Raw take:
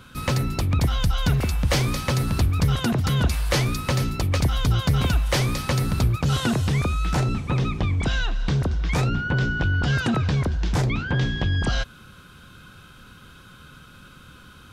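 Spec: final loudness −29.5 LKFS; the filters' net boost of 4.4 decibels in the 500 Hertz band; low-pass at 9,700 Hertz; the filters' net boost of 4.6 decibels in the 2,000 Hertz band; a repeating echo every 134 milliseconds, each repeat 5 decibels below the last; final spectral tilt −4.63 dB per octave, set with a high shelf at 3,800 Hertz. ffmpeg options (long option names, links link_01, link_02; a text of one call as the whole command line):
ffmpeg -i in.wav -af "lowpass=9700,equalizer=frequency=500:width_type=o:gain=5,equalizer=frequency=2000:width_type=o:gain=4,highshelf=frequency=3800:gain=8,aecho=1:1:134|268|402|536|670|804|938:0.562|0.315|0.176|0.0988|0.0553|0.031|0.0173,volume=-9.5dB" out.wav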